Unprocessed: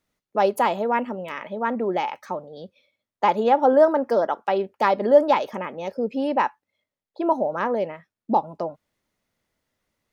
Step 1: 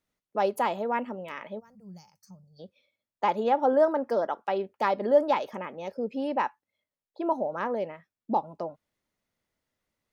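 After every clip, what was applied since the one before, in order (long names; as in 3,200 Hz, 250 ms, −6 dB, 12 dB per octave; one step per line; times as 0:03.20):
gain on a spectral selection 0:01.60–0:02.60, 210–4,300 Hz −28 dB
level −6 dB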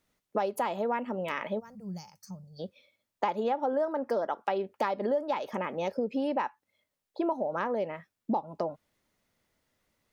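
downward compressor 6 to 1, threshold −34 dBFS, peak gain reduction 17.5 dB
level +7 dB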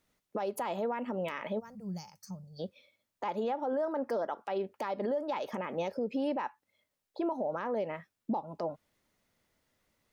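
brickwall limiter −25 dBFS, peak gain reduction 10 dB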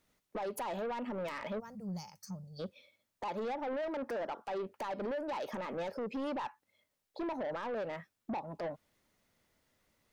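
soft clipping −34.5 dBFS, distortion −10 dB
level +1 dB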